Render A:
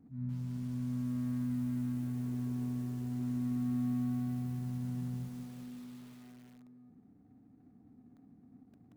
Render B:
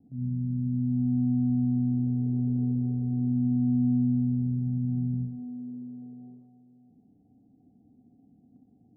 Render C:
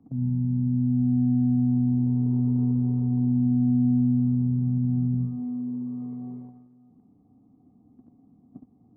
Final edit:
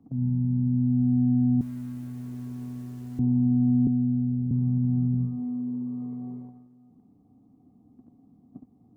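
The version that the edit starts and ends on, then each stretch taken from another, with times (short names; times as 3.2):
C
1.61–3.19 from A
3.87–4.51 from B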